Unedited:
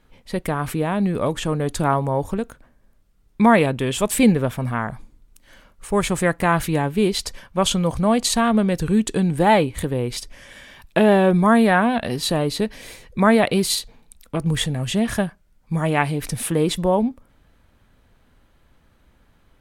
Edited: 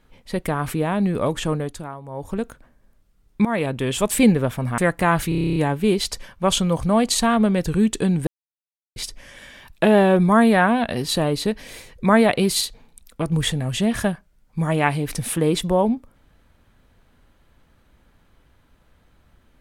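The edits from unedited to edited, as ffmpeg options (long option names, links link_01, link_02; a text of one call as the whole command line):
ffmpeg -i in.wav -filter_complex "[0:a]asplit=15[link_01][link_02][link_03][link_04][link_05][link_06][link_07][link_08][link_09][link_10][link_11][link_12][link_13][link_14][link_15];[link_01]atrim=end=1.97,asetpts=PTS-STARTPTS,afade=type=out:start_time=1.53:duration=0.44:curve=qua:silence=0.149624[link_16];[link_02]atrim=start=1.97:end=3.45,asetpts=PTS-STARTPTS,afade=type=in:duration=0.44:curve=qua:silence=0.149624,afade=type=out:start_time=1.476:duration=0.004:curve=hsin:silence=0.149624[link_17];[link_03]atrim=start=3.45:end=4.782,asetpts=PTS-STARTPTS,afade=type=in:duration=0.56:curve=qsin:silence=0.149624[link_18];[link_04]atrim=start=6.188:end=6.732[link_19];[link_05]atrim=start=6.698:end=6.732[link_20];[link_06]atrim=start=6.698:end=6.732[link_21];[link_07]atrim=start=6.698:end=6.732[link_22];[link_08]atrim=start=6.698:end=6.732[link_23];[link_09]atrim=start=6.698:end=6.732[link_24];[link_10]atrim=start=6.698:end=6.732[link_25];[link_11]atrim=start=6.698:end=6.732[link_26];[link_12]atrim=start=6.698:end=6.732[link_27];[link_13]atrim=start=6.698:end=9.41,asetpts=PTS-STARTPTS,afade=type=out:start_time=2.708:duration=0.004:curve=hsin[link_28];[link_14]atrim=start=9.41:end=10.1,asetpts=PTS-STARTPTS,volume=0[link_29];[link_15]atrim=start=10.1,asetpts=PTS-STARTPTS,afade=type=in:duration=0.004:curve=hsin[link_30];[link_16][link_17][link_18]concat=n=3:v=0:a=1[link_31];[link_31][link_19]acrossfade=duration=0.004:curve1=hsin:curve2=hsin[link_32];[link_32][link_20]acrossfade=duration=0.004:curve1=hsin:curve2=hsin[link_33];[link_33][link_21]acrossfade=duration=0.004:curve1=hsin:curve2=hsin[link_34];[link_34][link_22]acrossfade=duration=0.004:curve1=hsin:curve2=hsin[link_35];[link_35][link_23]acrossfade=duration=0.004:curve1=hsin:curve2=hsin[link_36];[link_36][link_24]acrossfade=duration=0.004:curve1=hsin:curve2=hsin[link_37];[link_37][link_25]acrossfade=duration=0.004:curve1=hsin:curve2=hsin[link_38];[link_38][link_26]acrossfade=duration=0.004:curve1=hsin:curve2=hsin[link_39];[link_39][link_27]acrossfade=duration=0.004:curve1=hsin:curve2=hsin[link_40];[link_28][link_29][link_30]concat=n=3:v=0:a=1[link_41];[link_40][link_41]acrossfade=duration=0.004:curve1=hsin:curve2=hsin" out.wav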